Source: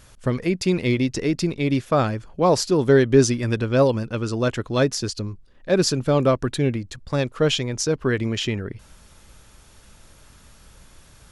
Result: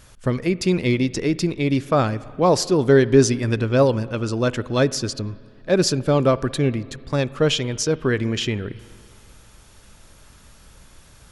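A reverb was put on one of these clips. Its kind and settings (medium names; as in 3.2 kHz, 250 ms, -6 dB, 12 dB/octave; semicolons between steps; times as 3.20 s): spring tank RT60 2.2 s, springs 44/56 ms, chirp 45 ms, DRR 18 dB; trim +1 dB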